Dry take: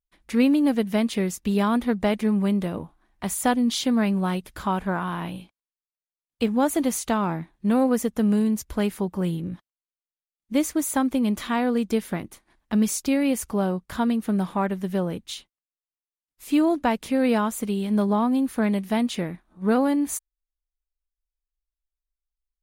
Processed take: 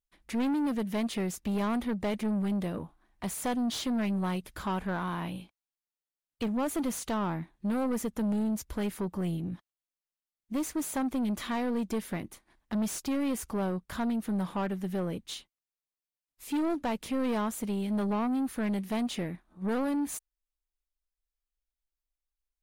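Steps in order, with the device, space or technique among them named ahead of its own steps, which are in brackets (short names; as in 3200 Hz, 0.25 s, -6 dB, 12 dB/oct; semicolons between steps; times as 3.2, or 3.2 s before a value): saturation between pre-emphasis and de-emphasis (high shelf 3800 Hz +10 dB; soft clip -23 dBFS, distortion -10 dB; high shelf 3800 Hz -10 dB); gain -3 dB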